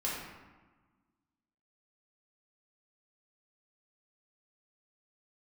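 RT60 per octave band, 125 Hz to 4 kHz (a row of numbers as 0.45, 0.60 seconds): 1.7, 1.9, 1.2, 1.4, 1.1, 0.75 seconds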